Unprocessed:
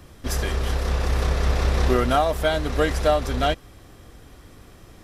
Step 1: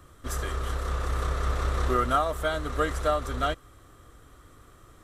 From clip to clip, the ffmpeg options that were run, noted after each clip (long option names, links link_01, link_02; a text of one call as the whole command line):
ffmpeg -i in.wav -af "equalizer=frequency=200:width_type=o:width=0.33:gain=-9,equalizer=frequency=800:width_type=o:width=0.33:gain=-4,equalizer=frequency=1250:width_type=o:width=0.33:gain=11,equalizer=frequency=2500:width_type=o:width=0.33:gain=-5,equalizer=frequency=5000:width_type=o:width=0.33:gain=-7,equalizer=frequency=8000:width_type=o:width=0.33:gain=5,volume=-6.5dB" out.wav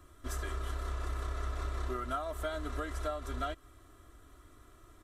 ffmpeg -i in.wav -af "acompressor=threshold=-28dB:ratio=6,aecho=1:1:3:0.58,volume=-6.5dB" out.wav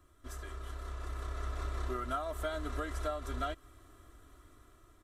ffmpeg -i in.wav -af "dynaudnorm=framelen=500:gausssize=5:maxgain=7dB,volume=-7dB" out.wav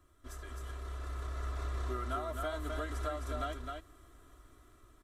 ffmpeg -i in.wav -af "aecho=1:1:261:0.596,volume=-2dB" out.wav